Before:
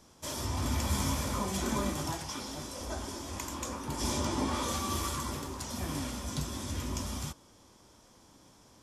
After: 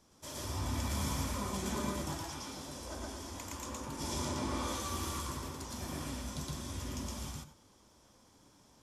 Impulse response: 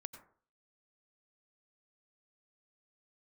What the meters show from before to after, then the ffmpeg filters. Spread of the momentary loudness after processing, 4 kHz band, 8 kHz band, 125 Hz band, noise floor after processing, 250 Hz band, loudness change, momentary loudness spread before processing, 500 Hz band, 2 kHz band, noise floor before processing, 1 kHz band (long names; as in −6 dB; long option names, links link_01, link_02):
8 LU, −4.5 dB, −4.5 dB, −4.0 dB, −64 dBFS, −4.5 dB, −4.5 dB, 7 LU, −4.0 dB, −4.0 dB, −60 dBFS, −4.5 dB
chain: -filter_complex "[0:a]asplit=2[link_01][link_02];[1:a]atrim=start_sample=2205,atrim=end_sample=4410,adelay=116[link_03];[link_02][link_03]afir=irnorm=-1:irlink=0,volume=5dB[link_04];[link_01][link_04]amix=inputs=2:normalize=0,volume=-7.5dB"